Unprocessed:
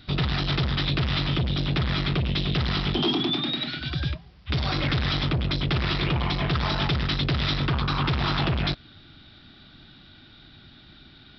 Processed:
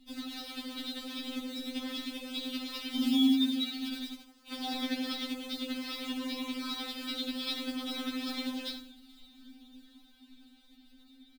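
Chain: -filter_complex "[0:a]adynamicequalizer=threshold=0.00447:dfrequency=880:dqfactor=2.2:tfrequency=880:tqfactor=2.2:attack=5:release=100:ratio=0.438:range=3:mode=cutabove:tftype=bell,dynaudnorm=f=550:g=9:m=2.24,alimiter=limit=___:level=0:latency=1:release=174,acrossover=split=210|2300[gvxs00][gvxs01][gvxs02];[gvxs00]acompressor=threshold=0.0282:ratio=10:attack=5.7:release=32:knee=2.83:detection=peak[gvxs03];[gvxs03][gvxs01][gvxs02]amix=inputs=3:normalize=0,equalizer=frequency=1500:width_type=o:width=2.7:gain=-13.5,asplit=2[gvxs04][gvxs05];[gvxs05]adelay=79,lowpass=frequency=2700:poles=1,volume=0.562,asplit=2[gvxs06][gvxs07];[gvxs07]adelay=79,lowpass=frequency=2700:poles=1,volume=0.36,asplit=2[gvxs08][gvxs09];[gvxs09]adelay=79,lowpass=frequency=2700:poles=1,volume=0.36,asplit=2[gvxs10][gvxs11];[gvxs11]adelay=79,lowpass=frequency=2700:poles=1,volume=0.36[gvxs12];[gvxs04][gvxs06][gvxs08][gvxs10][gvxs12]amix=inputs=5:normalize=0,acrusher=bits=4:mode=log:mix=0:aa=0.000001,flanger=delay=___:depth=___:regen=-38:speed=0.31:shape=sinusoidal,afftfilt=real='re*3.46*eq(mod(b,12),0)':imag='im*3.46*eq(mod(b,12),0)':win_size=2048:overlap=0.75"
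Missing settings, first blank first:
0.224, 0.3, 8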